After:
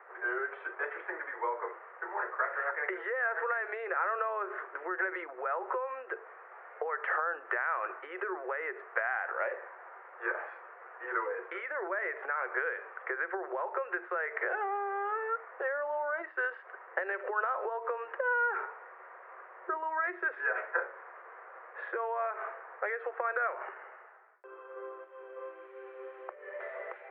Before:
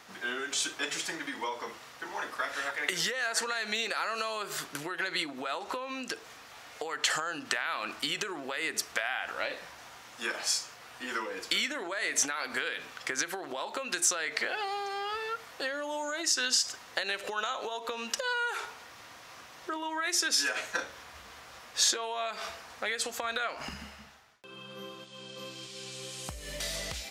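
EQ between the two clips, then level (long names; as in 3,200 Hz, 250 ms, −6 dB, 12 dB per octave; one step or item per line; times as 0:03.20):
Chebyshev high-pass with heavy ripple 360 Hz, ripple 3 dB
Butterworth low-pass 1,900 Hz 36 dB per octave
high-frequency loss of the air 350 metres
+5.0 dB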